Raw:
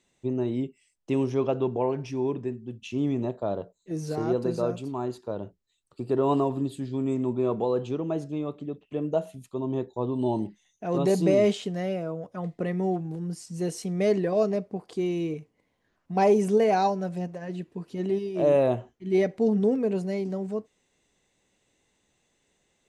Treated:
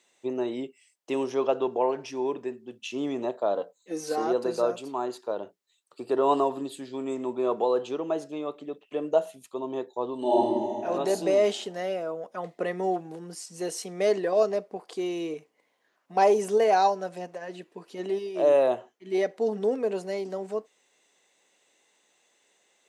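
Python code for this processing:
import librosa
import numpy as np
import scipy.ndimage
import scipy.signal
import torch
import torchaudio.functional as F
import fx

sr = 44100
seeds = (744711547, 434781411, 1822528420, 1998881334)

y = fx.comb(x, sr, ms=3.9, depth=0.65, at=(3.55, 4.27))
y = fx.reverb_throw(y, sr, start_s=10.18, length_s=0.67, rt60_s=2.2, drr_db=-7.0)
y = scipy.signal.sosfilt(scipy.signal.butter(2, 470.0, 'highpass', fs=sr, output='sos'), y)
y = fx.dynamic_eq(y, sr, hz=2300.0, q=4.9, threshold_db=-57.0, ratio=4.0, max_db=-5)
y = fx.rider(y, sr, range_db=3, speed_s=2.0)
y = y * librosa.db_to_amplitude(2.5)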